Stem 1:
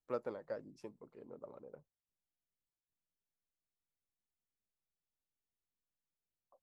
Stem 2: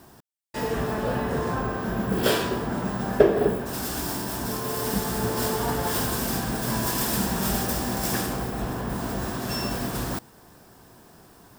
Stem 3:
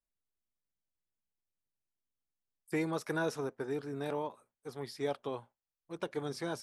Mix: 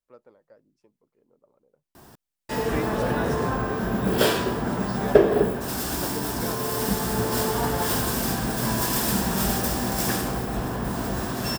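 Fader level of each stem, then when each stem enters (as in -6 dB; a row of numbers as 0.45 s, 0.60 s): -12.0 dB, +1.5 dB, +1.5 dB; 0.00 s, 1.95 s, 0.00 s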